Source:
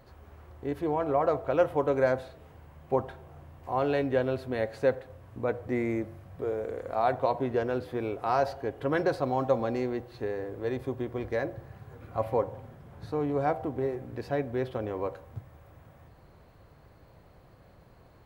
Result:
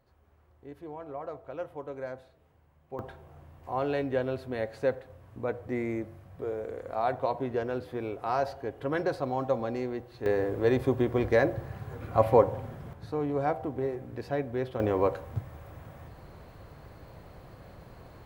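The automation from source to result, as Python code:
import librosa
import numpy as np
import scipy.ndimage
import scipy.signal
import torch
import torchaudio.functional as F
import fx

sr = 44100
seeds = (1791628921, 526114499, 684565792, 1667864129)

y = fx.gain(x, sr, db=fx.steps((0.0, -13.0), (2.99, -2.5), (10.26, 7.0), (12.93, -1.0), (14.8, 7.0)))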